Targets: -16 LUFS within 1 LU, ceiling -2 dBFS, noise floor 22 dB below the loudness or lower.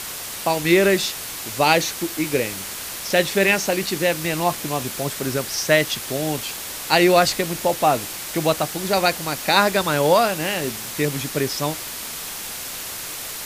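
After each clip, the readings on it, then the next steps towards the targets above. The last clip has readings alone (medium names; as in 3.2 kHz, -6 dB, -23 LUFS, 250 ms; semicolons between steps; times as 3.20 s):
noise floor -32 dBFS; noise floor target -43 dBFS; loudness -21.0 LUFS; peak level -2.5 dBFS; loudness target -16.0 LUFS
-> noise reduction 11 dB, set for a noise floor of -32 dBFS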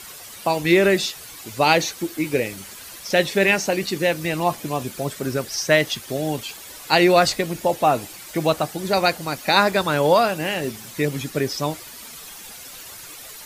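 noise floor -40 dBFS; noise floor target -43 dBFS
-> noise reduction 6 dB, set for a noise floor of -40 dBFS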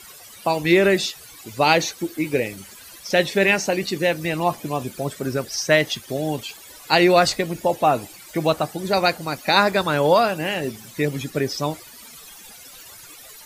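noise floor -44 dBFS; loudness -21.0 LUFS; peak level -2.5 dBFS; loudness target -16.0 LUFS
-> trim +5 dB; peak limiter -2 dBFS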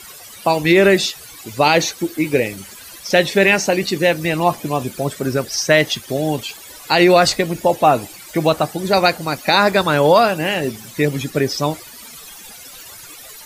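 loudness -16.5 LUFS; peak level -2.0 dBFS; noise floor -39 dBFS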